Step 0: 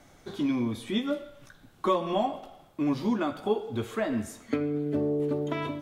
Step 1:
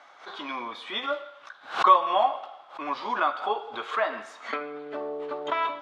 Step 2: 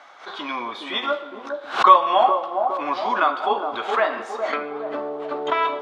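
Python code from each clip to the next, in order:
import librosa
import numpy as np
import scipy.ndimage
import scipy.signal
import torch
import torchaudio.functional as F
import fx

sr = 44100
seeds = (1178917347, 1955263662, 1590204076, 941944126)

y1 = scipy.signal.sosfilt(scipy.signal.cheby1(2, 1.0, [720.0, 3900.0], 'bandpass', fs=sr, output='sos'), x)
y1 = fx.peak_eq(y1, sr, hz=1200.0, db=9.0, octaves=0.93)
y1 = fx.pre_swell(y1, sr, db_per_s=150.0)
y1 = F.gain(torch.from_numpy(y1), 4.0).numpy()
y2 = fx.echo_wet_bandpass(y1, sr, ms=413, feedback_pct=50, hz=410.0, wet_db=-3.5)
y2 = F.gain(torch.from_numpy(y2), 5.5).numpy()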